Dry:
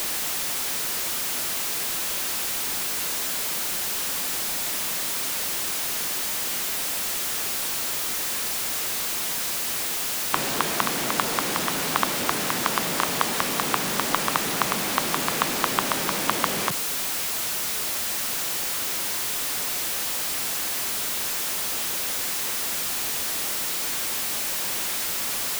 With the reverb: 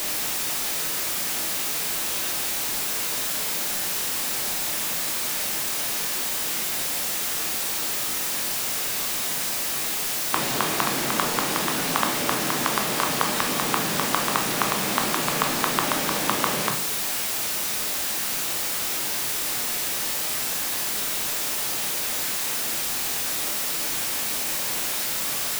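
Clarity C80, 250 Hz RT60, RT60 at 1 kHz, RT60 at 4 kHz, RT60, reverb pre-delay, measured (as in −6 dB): 13.0 dB, 0.65 s, 0.55 s, 0.40 s, 0.55 s, 15 ms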